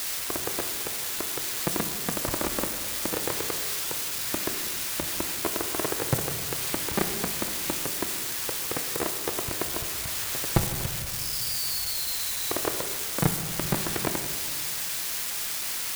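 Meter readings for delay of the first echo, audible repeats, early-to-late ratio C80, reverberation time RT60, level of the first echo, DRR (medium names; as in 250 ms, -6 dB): no echo, no echo, 9.5 dB, 1.7 s, no echo, 7.0 dB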